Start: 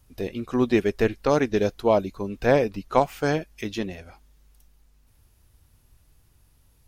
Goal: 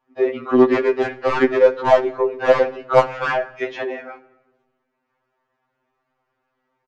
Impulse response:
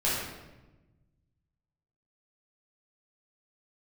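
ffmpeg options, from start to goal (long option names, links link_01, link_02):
-filter_complex "[0:a]acrossover=split=260 2000:gain=0.158 1 0.0891[link_01][link_02][link_03];[link_01][link_02][link_03]amix=inputs=3:normalize=0,asoftclip=type=hard:threshold=-18.5dB,aresample=16000,aresample=44100,asplit=2[link_04][link_05];[link_05]highpass=frequency=720:poles=1,volume=22dB,asoftclip=type=tanh:threshold=-4dB[link_06];[link_04][link_06]amix=inputs=2:normalize=0,lowpass=frequency=2300:poles=1,volume=-6dB,agate=range=-12dB:threshold=-41dB:ratio=16:detection=peak,asplit=2[link_07][link_08];[1:a]atrim=start_sample=2205,adelay=11[link_09];[link_08][link_09]afir=irnorm=-1:irlink=0,volume=-27dB[link_10];[link_07][link_10]amix=inputs=2:normalize=0,afftfilt=real='re*2.45*eq(mod(b,6),0)':imag='im*2.45*eq(mod(b,6),0)':win_size=2048:overlap=0.75,volume=4dB"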